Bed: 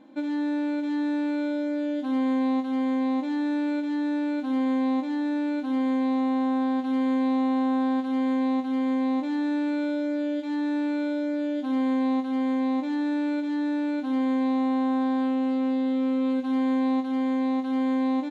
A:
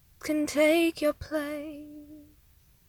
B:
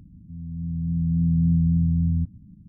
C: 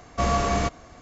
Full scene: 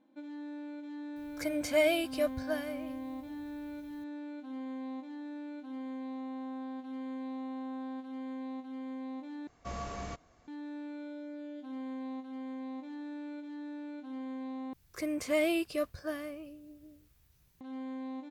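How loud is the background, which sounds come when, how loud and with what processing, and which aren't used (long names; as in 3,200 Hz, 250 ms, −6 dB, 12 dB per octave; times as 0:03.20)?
bed −16 dB
0:01.16: mix in A −5 dB + comb filter 1.3 ms, depth 56%
0:09.47: overwrite with C −17 dB
0:14.73: overwrite with A −6.5 dB
not used: B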